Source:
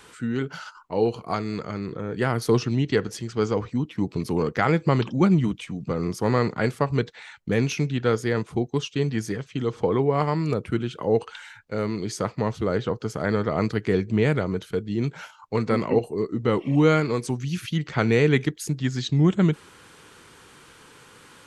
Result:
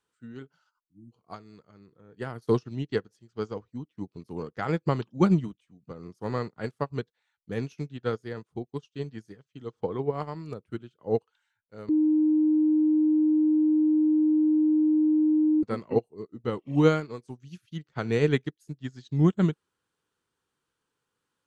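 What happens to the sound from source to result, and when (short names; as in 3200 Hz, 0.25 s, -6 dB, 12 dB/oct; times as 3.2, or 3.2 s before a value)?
0.79–1.12 spectral delete 330–6200 Hz
11.89–15.63 bleep 308 Hz -14.5 dBFS
whole clip: bell 2200 Hz -5 dB 0.42 oct; upward expander 2.5:1, over -36 dBFS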